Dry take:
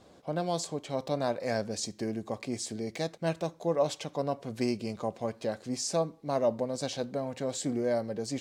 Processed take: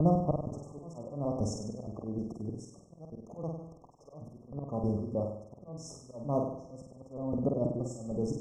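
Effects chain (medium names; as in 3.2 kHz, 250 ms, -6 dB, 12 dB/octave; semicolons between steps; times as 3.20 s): slices played last to first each 156 ms, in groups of 3; RIAA curve playback; slow attack 324 ms; hard clipper -18 dBFS, distortion -32 dB; slow attack 394 ms; vibrato 3.6 Hz 28 cents; brick-wall FIR band-stop 1.3–5.2 kHz; on a send: flutter echo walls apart 8.4 m, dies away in 0.7 s; on the sum: trim +1 dB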